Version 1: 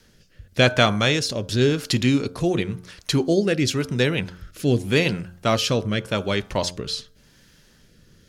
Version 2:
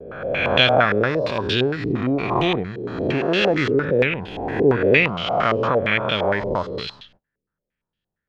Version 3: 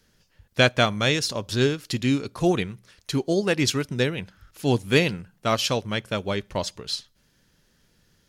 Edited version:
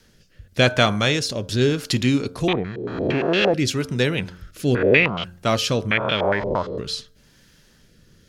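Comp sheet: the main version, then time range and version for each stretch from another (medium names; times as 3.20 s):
1
2.48–3.54 s: from 2
4.75–5.24 s: from 2
5.91–6.78 s: from 2
not used: 3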